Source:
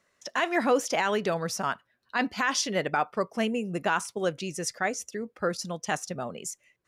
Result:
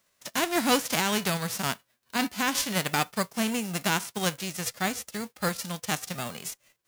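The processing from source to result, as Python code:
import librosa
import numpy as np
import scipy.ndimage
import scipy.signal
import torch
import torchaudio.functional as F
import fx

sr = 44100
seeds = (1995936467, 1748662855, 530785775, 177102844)

y = fx.envelope_flatten(x, sr, power=0.3)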